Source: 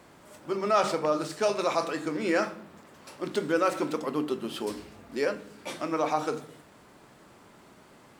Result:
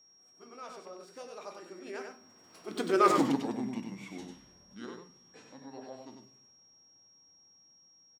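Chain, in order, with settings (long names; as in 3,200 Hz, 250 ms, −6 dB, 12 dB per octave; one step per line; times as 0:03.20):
source passing by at 0:03.13, 59 m/s, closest 9.1 metres
formants moved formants −3 semitones
on a send: single-tap delay 96 ms −5.5 dB
on the sum: steady tone 5,600 Hz −63 dBFS
level +3.5 dB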